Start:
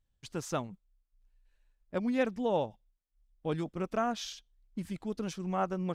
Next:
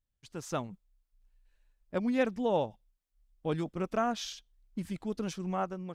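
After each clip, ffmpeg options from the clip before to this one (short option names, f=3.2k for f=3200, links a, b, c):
-af "dynaudnorm=f=100:g=9:m=9dB,volume=-8dB"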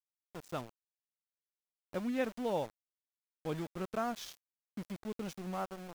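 -af "aeval=exprs='val(0)*gte(abs(val(0)),0.0119)':c=same,volume=-5.5dB"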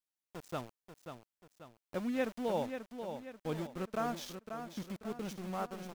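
-af "aecho=1:1:537|1074|1611|2148|2685:0.398|0.179|0.0806|0.0363|0.0163"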